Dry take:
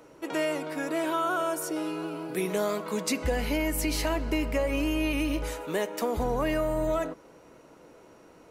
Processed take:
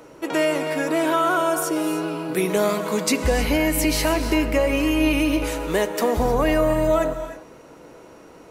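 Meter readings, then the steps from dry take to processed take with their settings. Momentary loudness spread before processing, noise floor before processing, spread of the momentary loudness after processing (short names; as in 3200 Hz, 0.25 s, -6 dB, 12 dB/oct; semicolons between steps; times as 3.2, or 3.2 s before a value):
5 LU, -54 dBFS, 5 LU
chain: non-linear reverb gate 0.34 s rising, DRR 9 dB; gain +7.5 dB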